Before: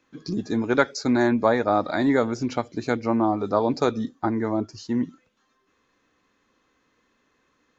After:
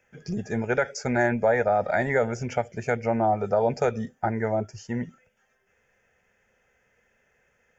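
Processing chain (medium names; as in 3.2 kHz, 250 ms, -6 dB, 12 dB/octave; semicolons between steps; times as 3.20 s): static phaser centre 1.1 kHz, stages 6; peak limiter -17 dBFS, peak gain reduction 8.5 dB; trim +4.5 dB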